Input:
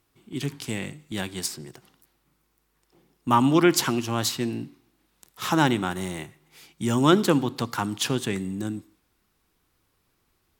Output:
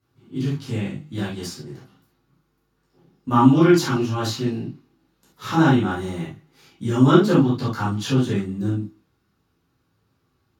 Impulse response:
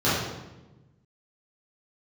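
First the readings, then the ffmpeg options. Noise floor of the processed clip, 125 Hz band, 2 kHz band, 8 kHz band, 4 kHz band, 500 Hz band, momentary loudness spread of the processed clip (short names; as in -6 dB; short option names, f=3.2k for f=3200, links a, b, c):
-69 dBFS, +8.0 dB, +1.0 dB, -6.0 dB, -2.0 dB, +4.0 dB, 19 LU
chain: -filter_complex "[1:a]atrim=start_sample=2205,atrim=end_sample=3969[a];[0:a][a]afir=irnorm=-1:irlink=0,volume=-15.5dB"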